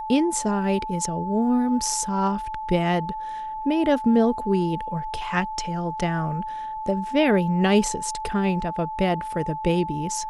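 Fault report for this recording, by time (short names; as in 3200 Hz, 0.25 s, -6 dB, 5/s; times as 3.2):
tone 870 Hz -29 dBFS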